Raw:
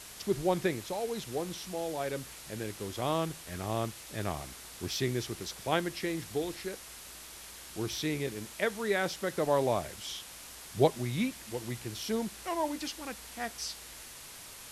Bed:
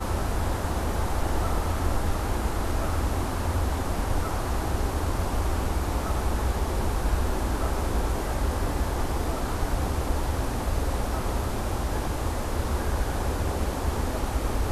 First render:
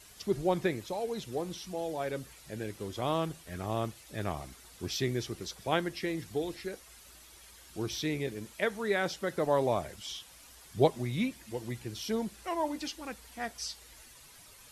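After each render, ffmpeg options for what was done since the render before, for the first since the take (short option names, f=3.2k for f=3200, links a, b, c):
-af "afftdn=nr=10:nf=-48"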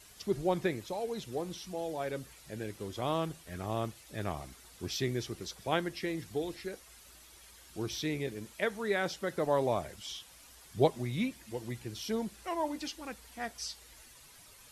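-af "volume=-1.5dB"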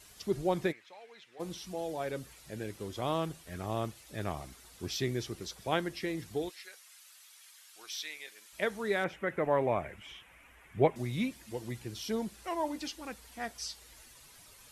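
-filter_complex "[0:a]asplit=3[a][b][c];[a]afade=t=out:st=0.71:d=0.02[d];[b]bandpass=f=2k:t=q:w=2.1,afade=t=in:st=0.71:d=0.02,afade=t=out:st=1.39:d=0.02[e];[c]afade=t=in:st=1.39:d=0.02[f];[d][e][f]amix=inputs=3:normalize=0,asplit=3[g][h][i];[g]afade=t=out:st=6.48:d=0.02[j];[h]highpass=1.4k,afade=t=in:st=6.48:d=0.02,afade=t=out:st=8.52:d=0.02[k];[i]afade=t=in:st=8.52:d=0.02[l];[j][k][l]amix=inputs=3:normalize=0,asettb=1/sr,asplit=3[m][n][o];[m]atrim=end=9.044[p];[n]atrim=start=9.04:end=10.96,asetpts=PTS-STARTPTS,afade=t=in:d=0.004:c=qsin,afade=t=out:st=1.916:d=0.004:c=qsin,highshelf=f=3.2k:t=q:w=3:g=-12[q];[o]atrim=start=10.956[r];[p][q]acrossfade=d=0.004:c1=hsin:c2=qsin[s];[s][r]acrossfade=d=0.004:c1=qsin:c2=hsin"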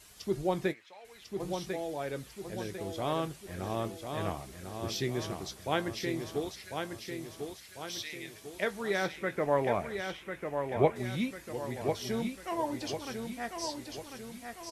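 -filter_complex "[0:a]asplit=2[a][b];[b]adelay=21,volume=-13.5dB[c];[a][c]amix=inputs=2:normalize=0,aecho=1:1:1047|2094|3141|4188|5235|6282:0.501|0.236|0.111|0.052|0.0245|0.0115"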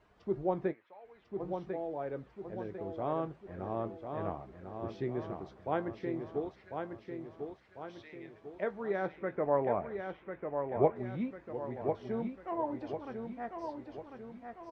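-af "lowpass=1.1k,lowshelf=f=200:g=-6.5"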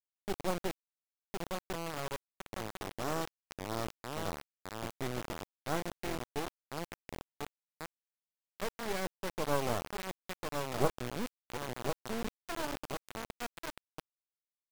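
-af "acrusher=bits=3:dc=4:mix=0:aa=0.000001"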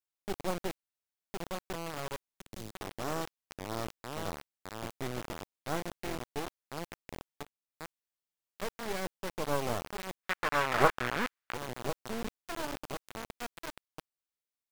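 -filter_complex "[0:a]asettb=1/sr,asplit=3[a][b][c];[a]atrim=end=2.304[d];[b]atrim=start=2.3:end=2.72,asetpts=PTS-STARTPTS,afade=t=in:d=0.004:c=qsin,afade=t=out:st=0.416:d=0.004:c=qsin,acrossover=split=400|3000[e][f][g];[f]acompressor=threshold=-59dB:ratio=2.5:attack=3.2:release=140:knee=2.83:detection=peak[h];[e][h][g]amix=inputs=3:normalize=0[i];[c]atrim=start=2.716[j];[d][i]acrossfade=d=0.004:c1=hsin:c2=qsin[k];[k][j]acrossfade=d=0.004:c1=qsin:c2=hsin,asettb=1/sr,asplit=3[l][m][n];[l]atrim=end=10.234[o];[m]atrim=start=10.23:end=11.54,asetpts=PTS-STARTPTS,afade=t=in:d=0.004:c=qsin,afade=t=out:st=1.306:d=0.004:c=qsin,equalizer=f=1.6k:w=0.69:g=15[p];[n]atrim=start=11.536[q];[o][p]acrossfade=d=0.004:c1=hsin:c2=qsin[r];[r][q]acrossfade=d=0.004:c1=qsin:c2=hsin,asplit=2[s][t];[s]atrim=end=7.43,asetpts=PTS-STARTPTS,afade=t=out:st=7.426:d=0.004:c=hsin:silence=0.16788[u];[t]atrim=start=7.43,asetpts=PTS-STARTPTS,afade=t=in:d=0.42:silence=0.16788[v];[u][v]concat=n=2:v=0:a=1"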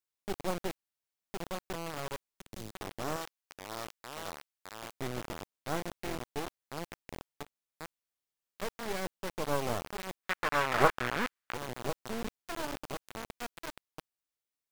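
-filter_complex "[0:a]asettb=1/sr,asplit=3[a][b][c];[a]atrim=end=3.164[d];[b]atrim=start=3.16:end=4.91,asetpts=PTS-STARTPTS,afade=t=in:d=0.004:c=qsin,afade=t=out:st=1.746:d=0.004:c=qsin,lowshelf=f=460:g=-11.5[e];[c]atrim=start=4.906[f];[d][e]acrossfade=d=0.004:c1=hsin:c2=qsin[g];[g][f]acrossfade=d=0.004:c1=qsin:c2=hsin"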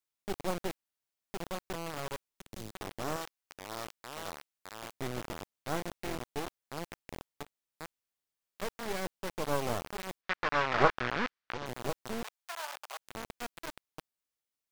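-filter_complex "[0:a]asettb=1/sr,asplit=3[a][b][c];[a]atrim=end=10.214[d];[b]atrim=start=10.21:end=11.66,asetpts=PTS-STARTPTS,afade=t=in:d=0.004:c=qsin,afade=t=out:st=1.446:d=0.004:c=qsin,lowpass=f=5.6k:w=0.5412,lowpass=f=5.6k:w=1.3066[e];[c]atrim=start=11.656[f];[d][e]acrossfade=d=0.004:c1=hsin:c2=qsin[g];[g][f]acrossfade=d=0.004:c1=qsin:c2=hsin,asettb=1/sr,asplit=3[h][i][j];[h]atrim=end=12.244[k];[i]atrim=start=12.24:end=12.99,asetpts=PTS-STARTPTS,afade=t=in:d=0.004:c=qsin,afade=t=out:st=0.746:d=0.004:c=qsin,highpass=f=710:w=0.5412,highpass=f=710:w=1.3066[l];[j]atrim=start=12.986[m];[k][l]acrossfade=d=0.004:c1=hsin:c2=qsin[n];[n][m]acrossfade=d=0.004:c1=qsin:c2=hsin"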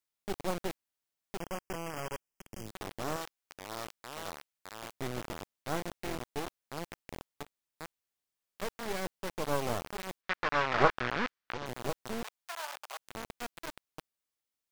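-filter_complex "[0:a]asettb=1/sr,asplit=3[a][b][c];[a]atrim=end=1.404[d];[b]atrim=start=1.4:end=2.66,asetpts=PTS-STARTPTS,afade=t=in:d=0.004:c=qsin,afade=t=out:st=1.256:d=0.004:c=qsin,asuperstop=centerf=3900:order=20:qfactor=2.8[e];[c]atrim=start=2.656[f];[d][e]acrossfade=d=0.004:c1=hsin:c2=qsin[g];[g][f]acrossfade=d=0.004:c1=qsin:c2=hsin"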